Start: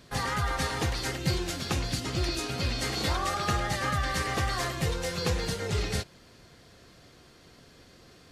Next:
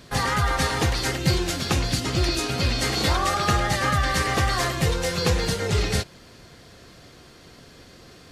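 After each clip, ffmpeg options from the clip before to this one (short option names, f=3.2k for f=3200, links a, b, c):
-af "acontrast=73"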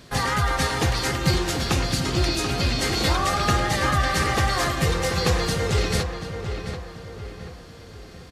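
-filter_complex "[0:a]asplit=2[a][b];[b]adelay=736,lowpass=f=2.7k:p=1,volume=-7.5dB,asplit=2[c][d];[d]adelay=736,lowpass=f=2.7k:p=1,volume=0.47,asplit=2[e][f];[f]adelay=736,lowpass=f=2.7k:p=1,volume=0.47,asplit=2[g][h];[h]adelay=736,lowpass=f=2.7k:p=1,volume=0.47,asplit=2[i][j];[j]adelay=736,lowpass=f=2.7k:p=1,volume=0.47[k];[a][c][e][g][i][k]amix=inputs=6:normalize=0"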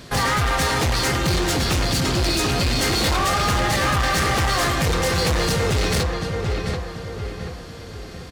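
-af "volume=24dB,asoftclip=hard,volume=-24dB,volume=6.5dB"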